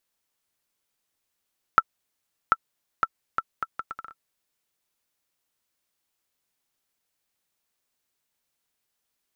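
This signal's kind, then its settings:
bouncing ball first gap 0.74 s, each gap 0.69, 1,330 Hz, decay 44 ms −3 dBFS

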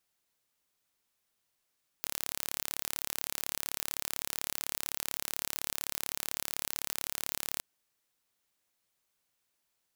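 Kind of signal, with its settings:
impulse train 35.8 per second, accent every 0, −7 dBFS 5.57 s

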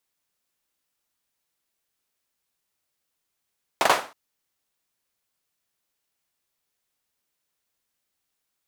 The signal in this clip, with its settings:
synth clap length 0.32 s, bursts 3, apart 43 ms, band 850 Hz, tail 0.35 s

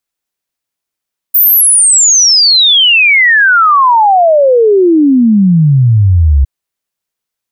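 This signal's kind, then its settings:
exponential sine sweep 15,000 Hz → 65 Hz 5.11 s −3.5 dBFS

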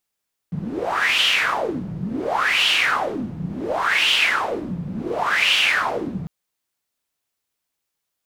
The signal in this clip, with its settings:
wind from filtered noise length 5.75 s, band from 160 Hz, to 3,000 Hz, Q 6.2, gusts 4, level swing 11.5 dB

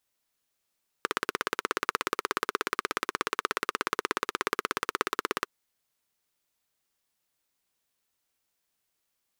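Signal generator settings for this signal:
pulse-train model of a single-cylinder engine, steady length 4.42 s, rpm 2,000, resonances 420/1,200 Hz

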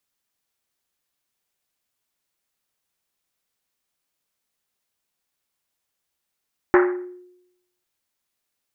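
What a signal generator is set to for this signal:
drum after Risset, pitch 360 Hz, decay 0.87 s, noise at 1,400 Hz, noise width 1,100 Hz, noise 25%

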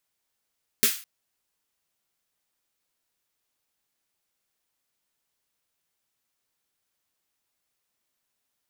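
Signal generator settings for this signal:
synth snare length 0.21 s, tones 230 Hz, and 420 Hz, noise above 1,500 Hz, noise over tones 9.5 dB, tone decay 0.13 s, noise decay 0.38 s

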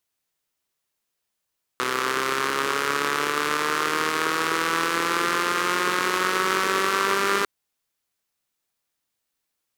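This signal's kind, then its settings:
pulse-train model of a four-cylinder engine, changing speed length 5.65 s, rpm 3,800, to 6,000, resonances 410/1,200 Hz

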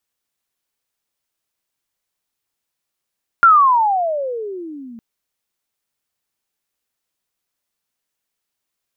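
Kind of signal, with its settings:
pitch glide with a swell sine, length 1.56 s, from 1,410 Hz, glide −32 semitones, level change −28 dB, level −5 dB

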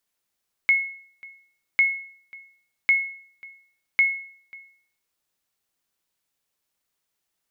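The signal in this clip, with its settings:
ping with an echo 2,180 Hz, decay 0.55 s, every 1.10 s, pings 4, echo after 0.54 s, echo −24 dB −11.5 dBFS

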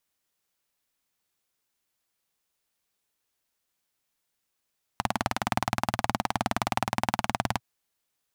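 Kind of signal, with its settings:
pulse-train model of a single-cylinder engine, steady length 2.60 s, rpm 2,300, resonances 120/210/760 Hz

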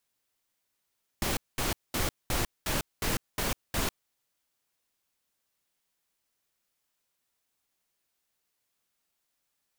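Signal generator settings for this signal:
noise bursts pink, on 0.15 s, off 0.21 s, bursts 8, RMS −29 dBFS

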